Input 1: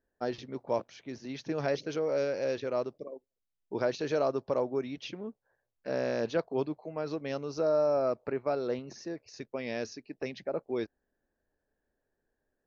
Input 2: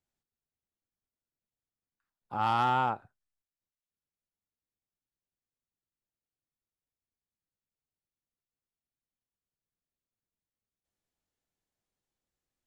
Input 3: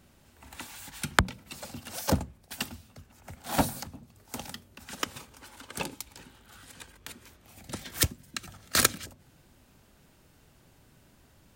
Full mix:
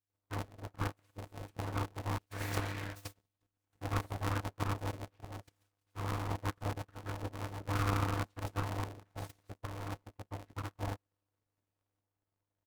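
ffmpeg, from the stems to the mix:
ffmpeg -i stem1.wav -i stem2.wav -i stem3.wav -filter_complex "[0:a]lowpass=frequency=1200:width=0.5412,lowpass=frequency=1200:width=1.3066,adelay=100,volume=0.5dB,asplit=3[link_01][link_02][link_03];[link_01]atrim=end=2.18,asetpts=PTS-STARTPTS,afade=type=out:start_time=2.176:duration=0.004:curve=hsin[link_04];[link_02]atrim=start=2.18:end=3.35,asetpts=PTS-STARTPTS,volume=0[link_05];[link_03]atrim=start=3.35,asetpts=PTS-STARTPTS,afade=type=in:duration=0.004:curve=hsin[link_06];[link_04][link_05][link_06]concat=n=3:v=0:a=1[link_07];[1:a]afade=type=out:start_time=2.22:duration=0.33:silence=0.446684,asplit=2[link_08][link_09];[2:a]adelay=450,volume=-5.5dB[link_10];[link_09]apad=whole_len=529537[link_11];[link_10][link_11]sidechaingate=range=-21dB:threshold=-59dB:ratio=16:detection=peak[link_12];[link_07][link_08][link_12]amix=inputs=3:normalize=0,afftfilt=real='hypot(re,im)*cos(2*PI*random(0))':imag='hypot(re,im)*sin(2*PI*random(1))':win_size=512:overlap=0.75,aeval=exprs='abs(val(0))':channel_layout=same,aeval=exprs='val(0)*sgn(sin(2*PI*100*n/s))':channel_layout=same" out.wav

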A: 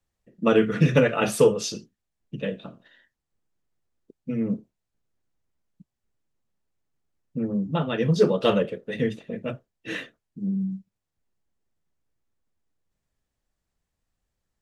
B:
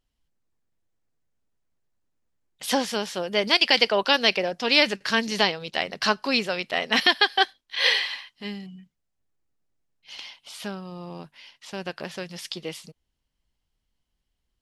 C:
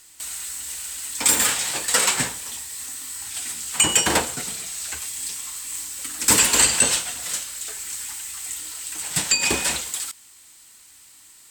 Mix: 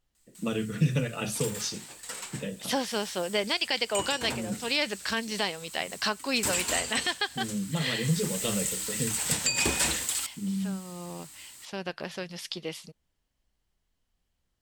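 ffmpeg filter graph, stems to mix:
ffmpeg -i stem1.wav -i stem2.wav -i stem3.wav -filter_complex "[0:a]acrossover=split=180|3000[link_01][link_02][link_03];[link_02]acompressor=threshold=-37dB:ratio=2.5[link_04];[link_01][link_04][link_03]amix=inputs=3:normalize=0,volume=-1.5dB,asplit=2[link_05][link_06];[1:a]volume=-2dB[link_07];[2:a]equalizer=frequency=88:width_type=o:width=2.5:gain=5.5,adelay=150,afade=type=in:start_time=2.59:duration=0.28:silence=0.375837,afade=type=in:start_time=7.99:duration=0.45:silence=0.266073[link_08];[link_06]apad=whole_len=644311[link_09];[link_07][link_09]sidechaincompress=threshold=-36dB:ratio=8:attack=16:release=491[link_10];[link_05][link_10][link_08]amix=inputs=3:normalize=0,alimiter=limit=-14dB:level=0:latency=1:release=410" out.wav

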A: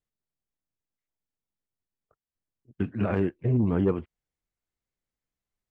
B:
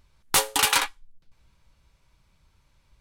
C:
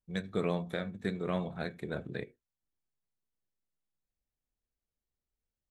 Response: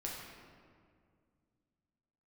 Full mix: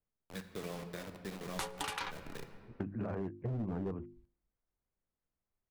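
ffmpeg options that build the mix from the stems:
-filter_complex "[0:a]lowpass=1400,bandreject=frequency=50:width_type=h:width=6,bandreject=frequency=100:width_type=h:width=6,bandreject=frequency=150:width_type=h:width=6,bandreject=frequency=200:width_type=h:width=6,bandreject=frequency=250:width_type=h:width=6,bandreject=frequency=300:width_type=h:width=6,bandreject=frequency=350:width_type=h:width=6,volume=1dB[link_01];[1:a]highshelf=frequency=2500:gain=-9,afwtdn=0.01,adelay=1250,volume=-3.5dB,asplit=2[link_02][link_03];[link_03]volume=-19dB[link_04];[2:a]acrusher=bits=5:mix=0:aa=0.000001,adelay=200,volume=-12.5dB,asplit=2[link_05][link_06];[link_06]volume=-3.5dB[link_07];[3:a]atrim=start_sample=2205[link_08];[link_04][link_07]amix=inputs=2:normalize=0[link_09];[link_09][link_08]afir=irnorm=-1:irlink=0[link_10];[link_01][link_02][link_05][link_10]amix=inputs=4:normalize=0,acrossover=split=250[link_11][link_12];[link_12]acompressor=threshold=-28dB:ratio=2[link_13];[link_11][link_13]amix=inputs=2:normalize=0,volume=21dB,asoftclip=hard,volume=-21dB,acompressor=threshold=-37dB:ratio=4"

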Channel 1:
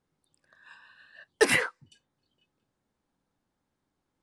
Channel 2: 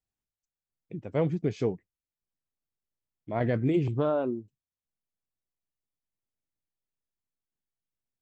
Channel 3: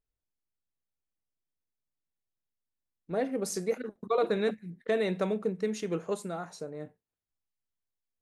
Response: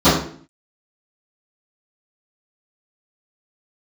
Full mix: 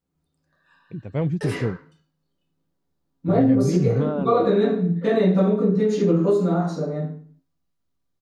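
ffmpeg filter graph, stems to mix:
-filter_complex "[0:a]alimiter=limit=-16dB:level=0:latency=1,volume=-12dB,asplit=2[link_01][link_02];[link_02]volume=-20.5dB[link_03];[1:a]asubboost=boost=5:cutoff=220,volume=1dB[link_04];[2:a]adelay=150,volume=-7.5dB,asplit=2[link_05][link_06];[link_06]volume=-8.5dB[link_07];[3:a]atrim=start_sample=2205[link_08];[link_03][link_07]amix=inputs=2:normalize=0[link_09];[link_09][link_08]afir=irnorm=-1:irlink=0[link_10];[link_01][link_04][link_05][link_10]amix=inputs=4:normalize=0,acompressor=threshold=-16dB:ratio=3"

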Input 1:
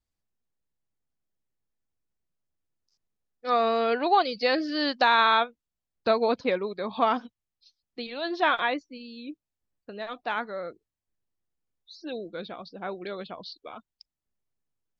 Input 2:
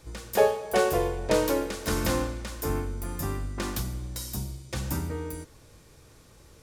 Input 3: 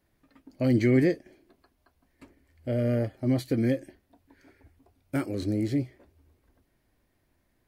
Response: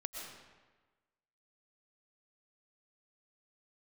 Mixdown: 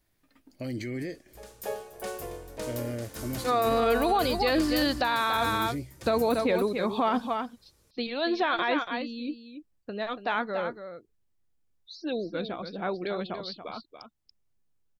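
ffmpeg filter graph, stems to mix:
-filter_complex "[0:a]lowshelf=frequency=200:gain=7,volume=2.5dB,asplit=3[link_01][link_02][link_03];[link_02]volume=-10dB[link_04];[1:a]crystalizer=i=1:c=0,adelay=1000,volume=-6.5dB,asplit=2[link_05][link_06];[link_06]volume=-7dB[link_07];[2:a]highshelf=frequency=2100:gain=9.5,alimiter=limit=-21dB:level=0:latency=1:release=41,volume=-6dB[link_08];[link_03]apad=whole_len=336311[link_09];[link_05][link_09]sidechaingate=range=-22dB:threshold=-42dB:ratio=16:detection=peak[link_10];[link_04][link_07]amix=inputs=2:normalize=0,aecho=0:1:283:1[link_11];[link_01][link_10][link_08][link_11]amix=inputs=4:normalize=0,alimiter=limit=-16.5dB:level=0:latency=1:release=19"

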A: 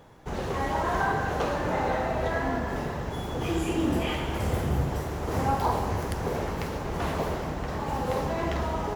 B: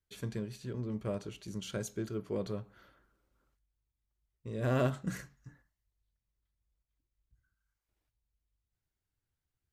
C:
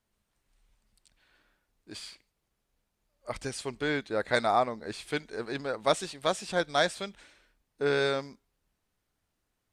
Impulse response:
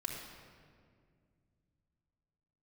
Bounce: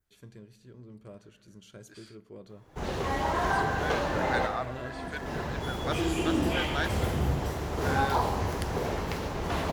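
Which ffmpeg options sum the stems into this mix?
-filter_complex "[0:a]adelay=2500,volume=-2dB,asplit=2[link_01][link_02];[link_02]volume=-19dB[link_03];[1:a]acompressor=mode=upward:threshold=-56dB:ratio=2.5,volume=-12dB,asplit=3[link_04][link_05][link_06];[link_05]volume=-14.5dB[link_07];[2:a]equalizer=frequency=1500:width_type=o:width=0.77:gain=11.5,volume=-13dB[link_08];[link_06]apad=whole_len=505182[link_09];[link_01][link_09]sidechaincompress=threshold=-56dB:ratio=8:attack=31:release=294[link_10];[3:a]atrim=start_sample=2205[link_11];[link_03][link_07]amix=inputs=2:normalize=0[link_12];[link_12][link_11]afir=irnorm=-1:irlink=0[link_13];[link_10][link_04][link_08][link_13]amix=inputs=4:normalize=0,adynamicequalizer=threshold=0.00251:dfrequency=3800:dqfactor=0.86:tfrequency=3800:tqfactor=0.86:attack=5:release=100:ratio=0.375:range=2:mode=boostabove:tftype=bell"

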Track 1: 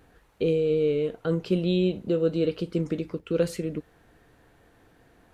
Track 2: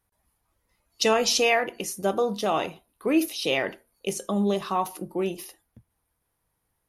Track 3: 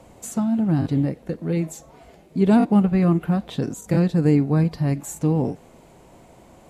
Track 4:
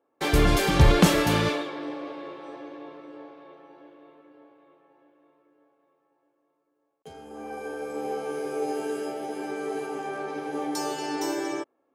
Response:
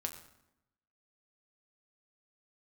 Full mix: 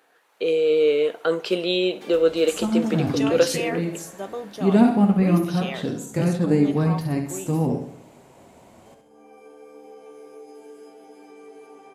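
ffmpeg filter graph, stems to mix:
-filter_complex "[0:a]dynaudnorm=framelen=200:gausssize=5:maxgain=10dB,highpass=530,volume=1.5dB,asplit=2[link_01][link_02];[link_02]volume=-20dB[link_03];[1:a]adelay=2150,volume=-8dB[link_04];[2:a]flanger=delay=7.2:depth=4.1:regen=-44:speed=1.5:shape=triangular,adelay=2250,volume=-0.5dB,asplit=3[link_05][link_06][link_07];[link_06]volume=-4dB[link_08];[link_07]volume=-4dB[link_09];[3:a]acompressor=threshold=-30dB:ratio=3,aecho=1:1:4.2:0.87,adelay=1800,volume=-16.5dB,asplit=2[link_10][link_11];[link_11]volume=-8.5dB[link_12];[4:a]atrim=start_sample=2205[link_13];[link_08][link_12]amix=inputs=2:normalize=0[link_14];[link_14][link_13]afir=irnorm=-1:irlink=0[link_15];[link_03][link_09]amix=inputs=2:normalize=0,aecho=0:1:68|136|204|272|340|408:1|0.44|0.194|0.0852|0.0375|0.0165[link_16];[link_01][link_04][link_05][link_10][link_15][link_16]amix=inputs=6:normalize=0,highpass=frequency=140:poles=1"

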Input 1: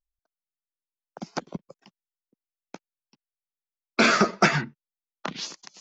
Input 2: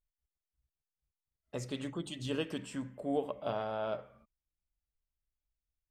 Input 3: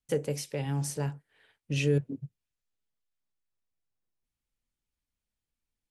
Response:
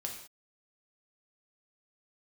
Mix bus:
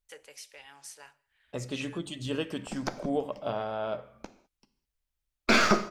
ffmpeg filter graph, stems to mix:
-filter_complex "[0:a]aeval=exprs='if(lt(val(0),0),0.447*val(0),val(0))':channel_layout=same,adelay=1500,volume=-4dB,asplit=2[link_01][link_02];[link_02]volume=-3.5dB[link_03];[1:a]volume=2dB,asplit=2[link_04][link_05];[link_05]volume=-14.5dB[link_06];[2:a]highpass=1300,highshelf=frequency=6700:gain=-7.5,volume=-5dB,asplit=2[link_07][link_08];[link_08]volume=-13dB[link_09];[3:a]atrim=start_sample=2205[link_10];[link_03][link_06][link_09]amix=inputs=3:normalize=0[link_11];[link_11][link_10]afir=irnorm=-1:irlink=0[link_12];[link_01][link_04][link_07][link_12]amix=inputs=4:normalize=0"

